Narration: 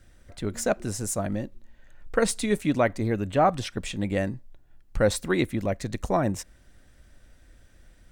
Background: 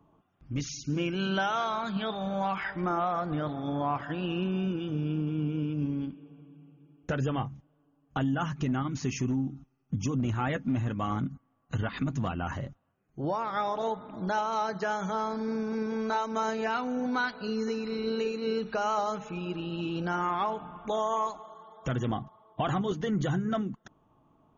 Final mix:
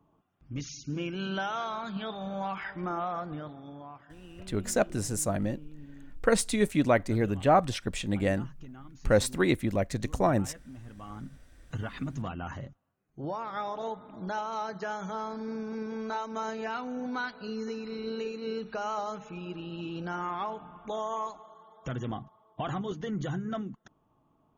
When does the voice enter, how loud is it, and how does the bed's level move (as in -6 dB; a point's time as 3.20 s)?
4.10 s, -1.0 dB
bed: 3.18 s -4 dB
3.97 s -18 dB
10.75 s -18 dB
11.64 s -4.5 dB